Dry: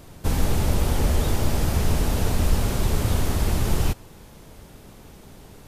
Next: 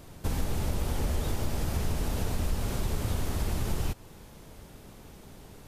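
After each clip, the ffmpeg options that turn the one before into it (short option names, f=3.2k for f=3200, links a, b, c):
-af "acompressor=threshold=-25dB:ratio=2,volume=-3.5dB"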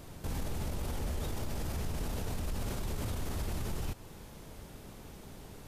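-af "alimiter=level_in=4dB:limit=-24dB:level=0:latency=1:release=32,volume=-4dB"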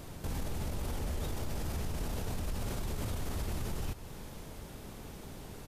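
-filter_complex "[0:a]asplit=2[a][b];[b]acompressor=threshold=-44dB:ratio=6,volume=-2.5dB[c];[a][c]amix=inputs=2:normalize=0,aecho=1:1:496:0.168,volume=-2dB"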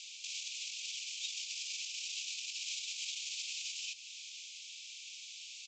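-af "asuperpass=centerf=4300:order=20:qfactor=0.84,volume=11dB"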